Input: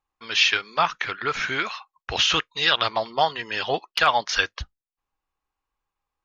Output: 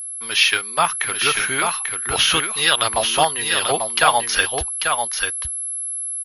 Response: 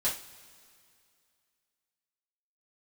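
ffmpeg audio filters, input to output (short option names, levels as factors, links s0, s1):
-af "aeval=exprs='val(0)+0.0282*sin(2*PI*11000*n/s)':c=same,aecho=1:1:841:0.562,volume=1.41"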